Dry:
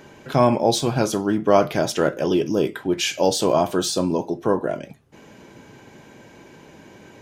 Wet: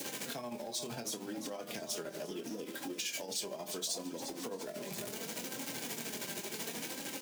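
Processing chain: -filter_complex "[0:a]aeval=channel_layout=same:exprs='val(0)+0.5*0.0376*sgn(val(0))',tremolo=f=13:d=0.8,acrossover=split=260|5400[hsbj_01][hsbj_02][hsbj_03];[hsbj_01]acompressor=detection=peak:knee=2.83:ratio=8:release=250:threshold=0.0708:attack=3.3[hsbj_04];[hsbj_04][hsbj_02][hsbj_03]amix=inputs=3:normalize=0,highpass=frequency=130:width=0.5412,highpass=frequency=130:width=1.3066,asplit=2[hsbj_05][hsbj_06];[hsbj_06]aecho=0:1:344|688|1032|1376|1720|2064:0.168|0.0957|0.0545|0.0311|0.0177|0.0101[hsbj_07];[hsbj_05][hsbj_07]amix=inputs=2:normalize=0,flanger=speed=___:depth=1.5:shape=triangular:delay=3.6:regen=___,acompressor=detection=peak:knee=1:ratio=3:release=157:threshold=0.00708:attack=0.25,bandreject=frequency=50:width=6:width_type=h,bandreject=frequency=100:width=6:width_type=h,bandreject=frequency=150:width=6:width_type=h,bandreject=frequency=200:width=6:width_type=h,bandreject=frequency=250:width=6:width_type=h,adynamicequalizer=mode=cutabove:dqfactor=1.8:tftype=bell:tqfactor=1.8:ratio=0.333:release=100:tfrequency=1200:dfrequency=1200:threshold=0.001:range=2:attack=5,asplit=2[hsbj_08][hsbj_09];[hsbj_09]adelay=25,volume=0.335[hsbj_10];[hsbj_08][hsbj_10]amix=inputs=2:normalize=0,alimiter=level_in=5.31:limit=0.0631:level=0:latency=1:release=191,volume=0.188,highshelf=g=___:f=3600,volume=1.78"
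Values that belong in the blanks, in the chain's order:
0.71, 43, 11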